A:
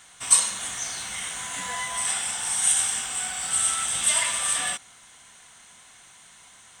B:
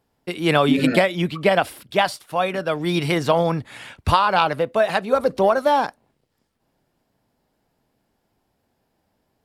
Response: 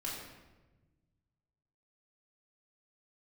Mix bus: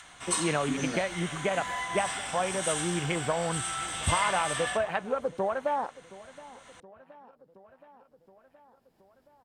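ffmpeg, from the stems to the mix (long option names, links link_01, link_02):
-filter_complex "[0:a]lowpass=frequency=2100:poles=1,volume=-4dB,asplit=2[link_01][link_02];[link_02]volume=-4dB[link_03];[1:a]afwtdn=0.0447,acompressor=threshold=-18dB:ratio=6,volume=-5.5dB,asplit=2[link_04][link_05];[link_05]volume=-20.5dB[link_06];[2:a]atrim=start_sample=2205[link_07];[link_03][link_07]afir=irnorm=-1:irlink=0[link_08];[link_06]aecho=0:1:722|1444|2166|2888|3610:1|0.38|0.144|0.0549|0.0209[link_09];[link_01][link_04][link_08][link_09]amix=inputs=4:normalize=0,adynamicequalizer=threshold=0.00794:dfrequency=270:dqfactor=0.99:tfrequency=270:tqfactor=0.99:attack=5:release=100:ratio=0.375:range=2.5:mode=cutabove:tftype=bell,acompressor=mode=upward:threshold=-44dB:ratio=2.5"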